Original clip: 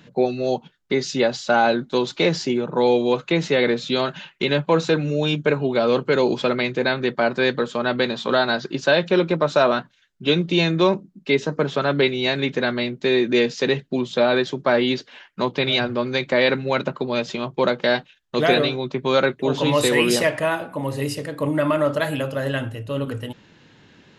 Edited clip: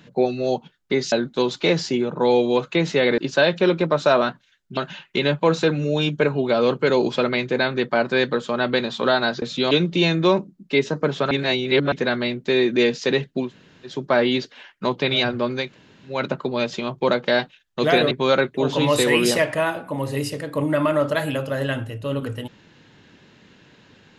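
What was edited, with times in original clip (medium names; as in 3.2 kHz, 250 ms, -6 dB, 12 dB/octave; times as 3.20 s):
1.12–1.68 s: delete
3.74–4.03 s: swap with 8.68–10.27 s
11.87–12.48 s: reverse
14.02–14.47 s: room tone, crossfade 0.16 s
16.21–16.70 s: room tone, crossfade 0.24 s
18.67–18.96 s: delete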